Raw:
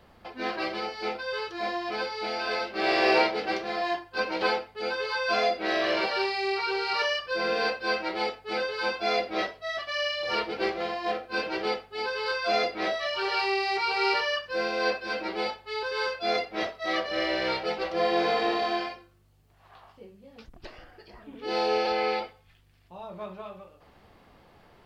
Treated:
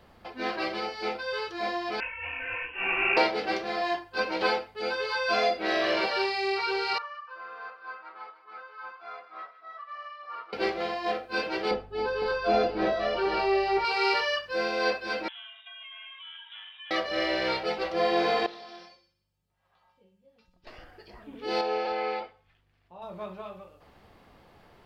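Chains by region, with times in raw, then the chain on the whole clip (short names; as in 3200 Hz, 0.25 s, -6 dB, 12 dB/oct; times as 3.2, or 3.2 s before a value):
2–3.17 inverted band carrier 3100 Hz + detuned doubles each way 37 cents
6.98–10.53 band-pass 1200 Hz, Q 7.5 + split-band echo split 1300 Hz, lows 0.294 s, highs 0.154 s, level -13 dB
11.71–13.85 tilt -3.5 dB/oct + notch 2100 Hz, Q 13 + echo 0.505 s -9.5 dB
15.28–16.91 compressor 12:1, threshold -41 dBFS + inverted band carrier 3700 Hz + steep high-pass 700 Hz 48 dB/oct
18.46–20.67 resonator 180 Hz, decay 0.39 s, harmonics odd, mix 90% + thin delay 61 ms, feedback 59%, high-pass 3200 Hz, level -9.5 dB + Doppler distortion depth 0.12 ms
21.61–23.02 LPF 1600 Hz 6 dB/oct + low shelf 400 Hz -8 dB
whole clip: dry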